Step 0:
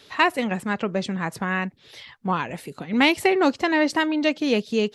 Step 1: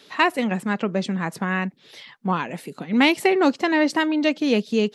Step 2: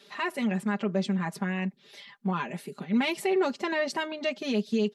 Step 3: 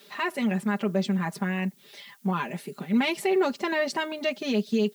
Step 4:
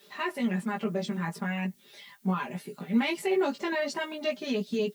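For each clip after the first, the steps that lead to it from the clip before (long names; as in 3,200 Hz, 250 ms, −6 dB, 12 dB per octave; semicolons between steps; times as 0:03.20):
low shelf with overshoot 120 Hz −13.5 dB, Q 1.5
brickwall limiter −13.5 dBFS, peak gain reduction 9 dB; comb filter 5 ms, depth 89%; level −7.5 dB
background noise blue −63 dBFS; level +2 dB
spectral magnitudes quantised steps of 15 dB; chorus effect 0.43 Hz, delay 16 ms, depth 2 ms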